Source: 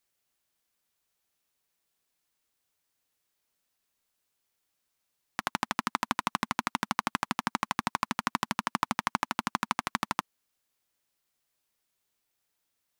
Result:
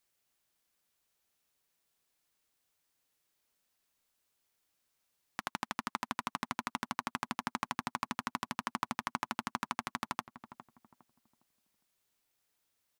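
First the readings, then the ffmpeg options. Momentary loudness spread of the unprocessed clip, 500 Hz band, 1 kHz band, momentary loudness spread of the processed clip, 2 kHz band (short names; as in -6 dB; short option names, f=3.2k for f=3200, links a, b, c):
2 LU, -6.5 dB, -6.5 dB, 5 LU, -6.5 dB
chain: -filter_complex "[0:a]alimiter=limit=-14.5dB:level=0:latency=1:release=481,asplit=2[a][b];[b]adelay=408,lowpass=f=870:p=1,volume=-10.5dB,asplit=2[c][d];[d]adelay=408,lowpass=f=870:p=1,volume=0.33,asplit=2[e][f];[f]adelay=408,lowpass=f=870:p=1,volume=0.33,asplit=2[g][h];[h]adelay=408,lowpass=f=870:p=1,volume=0.33[i];[c][e][g][i]amix=inputs=4:normalize=0[j];[a][j]amix=inputs=2:normalize=0"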